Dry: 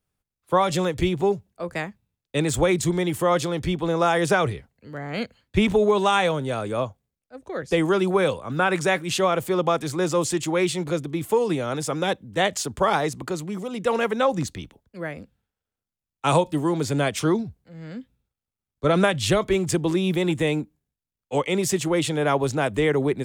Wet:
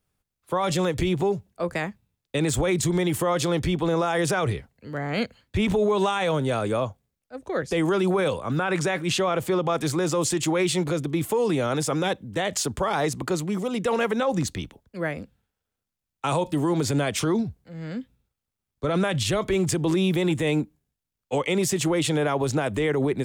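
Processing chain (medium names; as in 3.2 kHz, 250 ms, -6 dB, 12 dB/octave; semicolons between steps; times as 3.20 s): 8.62–9.73 s: treble shelf 9.1 kHz -8 dB; peak limiter -19 dBFS, peak gain reduction 11.5 dB; trim +3.5 dB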